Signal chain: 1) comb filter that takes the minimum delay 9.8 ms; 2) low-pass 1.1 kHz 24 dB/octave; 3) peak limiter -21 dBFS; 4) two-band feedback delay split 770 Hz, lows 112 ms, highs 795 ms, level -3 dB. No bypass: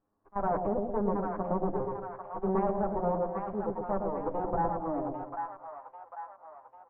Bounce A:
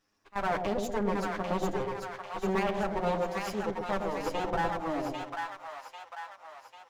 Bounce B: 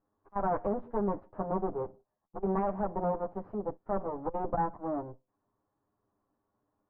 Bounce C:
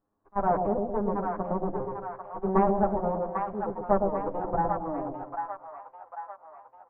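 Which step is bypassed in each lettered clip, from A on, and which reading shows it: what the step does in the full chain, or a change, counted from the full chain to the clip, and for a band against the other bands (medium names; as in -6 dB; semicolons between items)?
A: 2, 2 kHz band +13.5 dB; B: 4, echo-to-direct -1.5 dB to none; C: 3, crest factor change +3.5 dB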